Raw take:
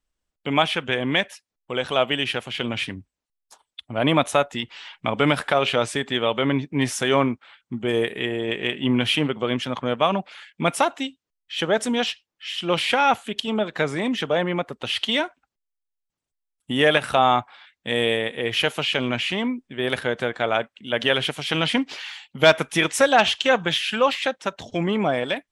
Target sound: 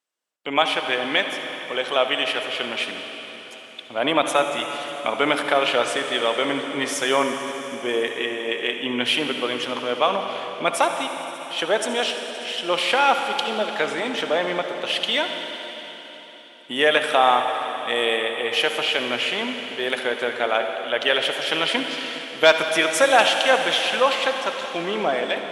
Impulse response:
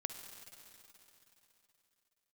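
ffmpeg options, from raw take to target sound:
-filter_complex "[0:a]highpass=380[link_01];[1:a]atrim=start_sample=2205,asetrate=36162,aresample=44100[link_02];[link_01][link_02]afir=irnorm=-1:irlink=0,volume=2dB"

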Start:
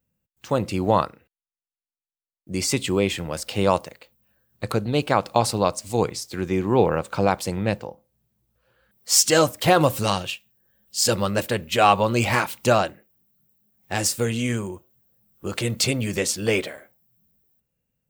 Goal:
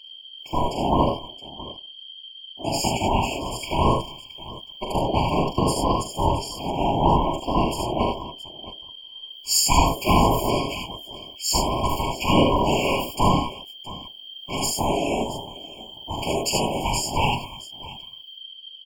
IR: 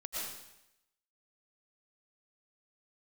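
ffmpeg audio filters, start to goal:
-af "aeval=exprs='val(0)+0.0141*sin(2*PI*3800*n/s)':channel_layout=same,bandreject=frequency=50:width_type=h:width=6,bandreject=frequency=100:width_type=h:width=6,bandreject=frequency=150:width_type=h:width=6,bandreject=frequency=200:width_type=h:width=6,bandreject=frequency=250:width_type=h:width=6,afftfilt=real='hypot(re,im)*cos(2*PI*random(0))':imag='hypot(re,im)*sin(2*PI*random(1))':win_size=512:overlap=0.75,aeval=exprs='val(0)*sin(2*PI*510*n/s)':channel_layout=same,aecho=1:1:40|66|73|90|643:0.562|0.473|0.531|0.422|0.15,asetrate=42336,aresample=44100,afftfilt=real='re*eq(mod(floor(b*sr/1024/1100),2),0)':imag='im*eq(mod(floor(b*sr/1024/1100),2),0)':win_size=1024:overlap=0.75,volume=7.5dB"

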